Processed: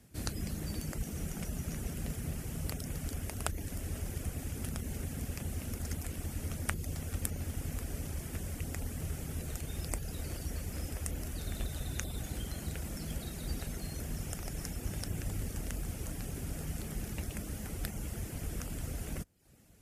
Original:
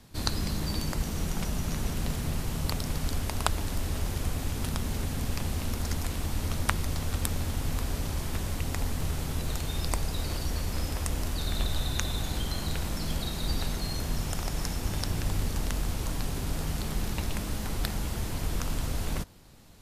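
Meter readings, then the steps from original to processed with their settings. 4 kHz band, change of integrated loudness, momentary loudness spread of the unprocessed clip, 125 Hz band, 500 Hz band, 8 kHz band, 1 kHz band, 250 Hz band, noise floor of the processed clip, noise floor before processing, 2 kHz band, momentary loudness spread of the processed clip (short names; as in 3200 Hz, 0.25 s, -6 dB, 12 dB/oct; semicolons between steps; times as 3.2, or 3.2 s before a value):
-12.5 dB, -7.0 dB, 2 LU, -6.5 dB, -7.0 dB, -5.0 dB, -11.5 dB, -6.0 dB, -45 dBFS, -35 dBFS, -8.0 dB, 3 LU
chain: HPF 40 Hz; reverb removal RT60 0.52 s; fifteen-band EQ 1000 Hz -10 dB, 4000 Hz -10 dB, 10000 Hz +3 dB; gain -4.5 dB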